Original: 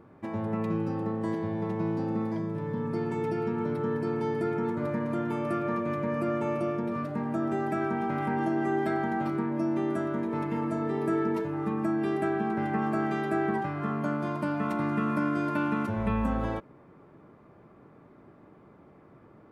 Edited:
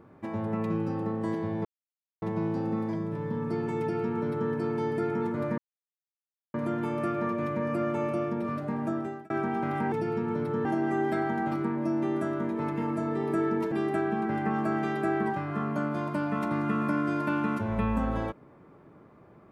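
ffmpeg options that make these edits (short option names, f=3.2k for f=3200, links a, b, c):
-filter_complex "[0:a]asplit=7[a][b][c][d][e][f][g];[a]atrim=end=1.65,asetpts=PTS-STARTPTS,afade=t=out:st=1.646:d=0.004:c=hsin,apad=pad_dur=0.57[h];[b]atrim=start=1.65:end=5.01,asetpts=PTS-STARTPTS,afade=t=in:d=0.004:c=hsin,afade=t=out:st=3.356:d=0.004:c=hsin,apad=pad_dur=0.96[i];[c]atrim=start=5.01:end=7.77,asetpts=PTS-STARTPTS,afade=t=in:d=0.004:c=hsin,afade=t=out:st=2.34:d=0.42[j];[d]atrim=start=7.77:end=8.392,asetpts=PTS-STARTPTS,afade=t=in:d=0.004:c=hsin[k];[e]atrim=start=3.218:end=3.952[l];[f]atrim=start=8.388:end=11.462[m];[g]atrim=start=11.998[n];[h][i][j][k]concat=n=4:v=0:a=1[o];[o][l]acrossfade=d=0.004:c1=hsin:c2=hsin[p];[p][m]acrossfade=d=0.004:c1=hsin:c2=hsin[q];[q][n]acrossfade=d=0.004:c1=hsin:c2=hsin"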